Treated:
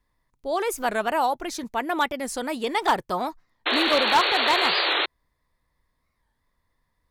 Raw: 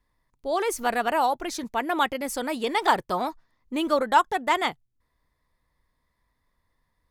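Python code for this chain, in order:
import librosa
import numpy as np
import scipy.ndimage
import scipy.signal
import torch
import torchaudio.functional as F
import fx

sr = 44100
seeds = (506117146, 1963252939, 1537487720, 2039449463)

y = fx.spec_paint(x, sr, seeds[0], shape='noise', start_s=3.66, length_s=1.4, low_hz=310.0, high_hz=4500.0, level_db=-23.0)
y = np.clip(y, -10.0 ** (-13.0 / 20.0), 10.0 ** (-13.0 / 20.0))
y = fx.record_warp(y, sr, rpm=45.0, depth_cents=160.0)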